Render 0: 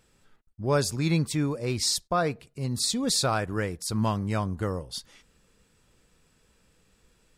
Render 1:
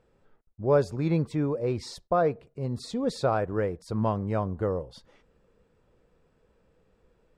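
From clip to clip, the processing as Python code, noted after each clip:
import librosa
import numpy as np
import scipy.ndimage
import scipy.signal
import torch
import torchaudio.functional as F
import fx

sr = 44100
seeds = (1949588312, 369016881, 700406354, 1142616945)

y = fx.curve_eq(x, sr, hz=(270.0, 490.0, 12000.0), db=(0, 7, -22))
y = y * 10.0 ** (-1.5 / 20.0)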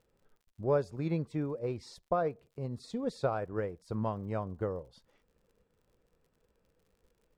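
y = fx.transient(x, sr, attack_db=4, sustain_db=-3)
y = fx.dmg_crackle(y, sr, seeds[0], per_s=71.0, level_db=-51.0)
y = y * 10.0 ** (-8.0 / 20.0)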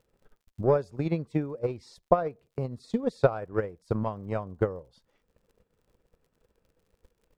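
y = fx.transient(x, sr, attack_db=11, sustain_db=-2)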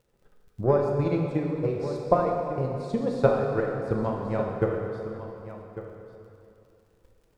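y = x + 10.0 ** (-13.0 / 20.0) * np.pad(x, (int(1149 * sr / 1000.0), 0))[:len(x)]
y = fx.rev_plate(y, sr, seeds[1], rt60_s=2.7, hf_ratio=0.8, predelay_ms=0, drr_db=0.0)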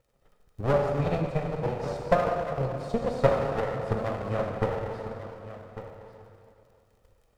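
y = fx.lower_of_two(x, sr, delay_ms=1.6)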